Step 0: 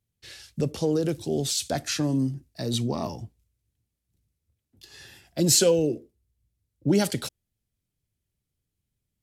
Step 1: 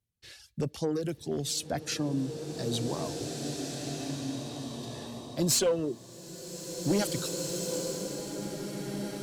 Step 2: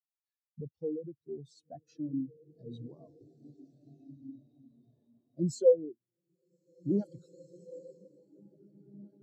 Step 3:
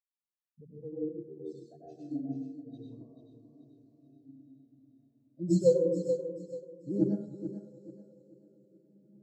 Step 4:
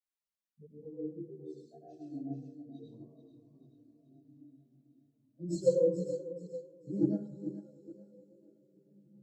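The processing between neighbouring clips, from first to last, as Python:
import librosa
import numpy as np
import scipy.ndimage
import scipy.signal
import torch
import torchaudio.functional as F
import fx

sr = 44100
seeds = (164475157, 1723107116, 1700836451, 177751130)

y1 = fx.clip_asym(x, sr, top_db=-18.0, bottom_db=-13.5)
y1 = fx.dereverb_blind(y1, sr, rt60_s=0.81)
y1 = fx.rev_bloom(y1, sr, seeds[0], attack_ms=2170, drr_db=3.0)
y1 = y1 * 10.0 ** (-4.5 / 20.0)
y2 = fx.spectral_expand(y1, sr, expansion=2.5)
y2 = y2 * 10.0 ** (3.5 / 20.0)
y3 = fx.echo_feedback(y2, sr, ms=435, feedback_pct=43, wet_db=-7.5)
y3 = fx.rev_plate(y3, sr, seeds[1], rt60_s=0.84, hf_ratio=0.45, predelay_ms=80, drr_db=-4.5)
y3 = fx.upward_expand(y3, sr, threshold_db=-40.0, expansion=1.5)
y3 = y3 * 10.0 ** (-1.0 / 20.0)
y4 = fx.chorus_voices(y3, sr, voices=4, hz=0.29, base_ms=17, depth_ms=3.7, mix_pct=65)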